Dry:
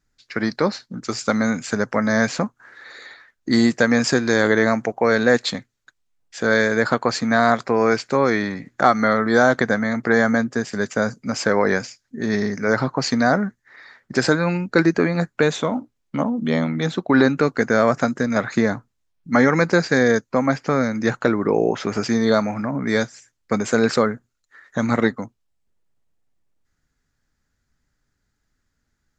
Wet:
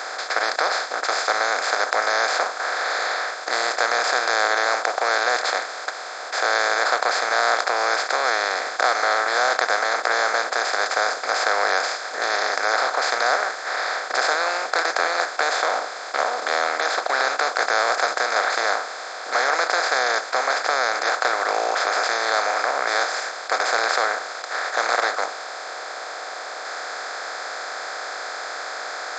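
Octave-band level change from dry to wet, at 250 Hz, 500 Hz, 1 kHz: -24.5, -5.0, +4.0 dB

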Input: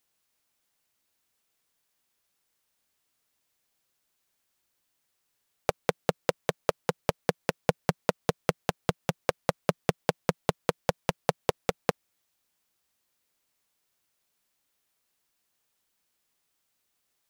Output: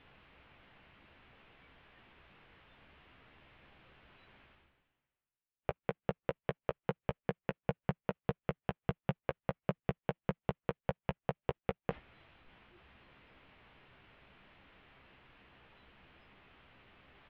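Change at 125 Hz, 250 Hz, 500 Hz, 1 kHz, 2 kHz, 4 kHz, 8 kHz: -4.5 dB, -6.0 dB, -9.0 dB, -10.0 dB, -10.5 dB, -16.5 dB, under -35 dB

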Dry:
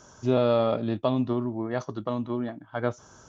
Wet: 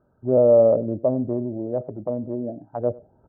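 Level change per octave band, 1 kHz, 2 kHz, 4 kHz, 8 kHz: -3.0 dB, under -20 dB, under -35 dB, n/a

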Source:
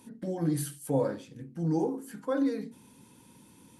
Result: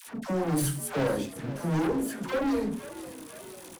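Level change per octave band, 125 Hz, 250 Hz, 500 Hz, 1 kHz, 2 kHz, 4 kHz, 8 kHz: +2.0, +1.5, +2.0, +5.5, +10.0, +9.5, +7.0 dB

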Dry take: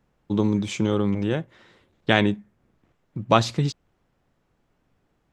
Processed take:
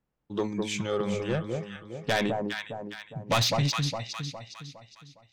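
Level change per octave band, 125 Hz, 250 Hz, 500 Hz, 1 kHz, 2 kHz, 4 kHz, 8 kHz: -4.5, -8.0, -3.5, -5.0, -4.0, +1.0, +4.0 dB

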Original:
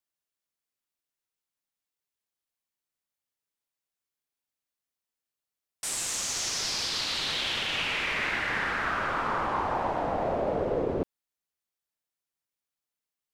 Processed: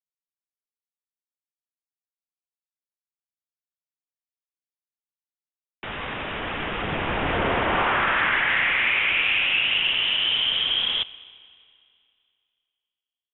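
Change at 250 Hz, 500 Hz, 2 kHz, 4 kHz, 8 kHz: +3.0 dB, 0.0 dB, +9.5 dB, +9.5 dB, under -40 dB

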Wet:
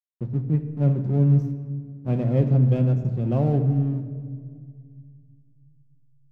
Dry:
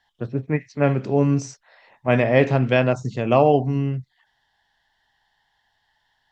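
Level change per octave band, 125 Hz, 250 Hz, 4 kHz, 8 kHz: +4.0 dB, -1.5 dB, under -15 dB, n/a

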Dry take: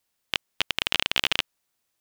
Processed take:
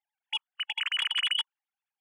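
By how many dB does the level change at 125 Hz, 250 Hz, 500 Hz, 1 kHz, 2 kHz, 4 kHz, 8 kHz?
under -30 dB, under -30 dB, under -25 dB, -7.5 dB, -5.0 dB, -1.5 dB, -10.5 dB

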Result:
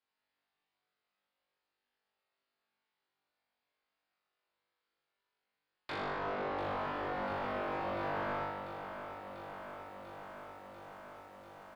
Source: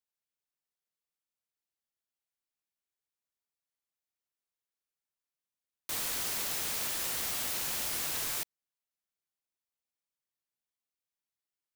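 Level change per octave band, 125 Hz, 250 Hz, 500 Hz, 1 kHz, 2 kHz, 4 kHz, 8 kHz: +5.5 dB, +8.0 dB, +11.5 dB, +9.5 dB, 0.0 dB, -13.5 dB, under -30 dB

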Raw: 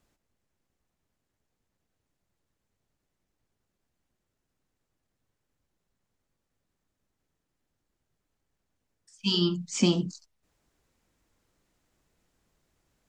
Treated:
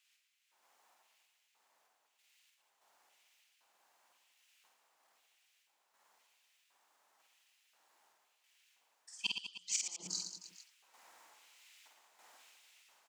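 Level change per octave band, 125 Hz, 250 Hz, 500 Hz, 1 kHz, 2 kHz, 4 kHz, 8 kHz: -33.0, -33.5, -32.5, -13.0, -3.5, -10.0, +0.5 dB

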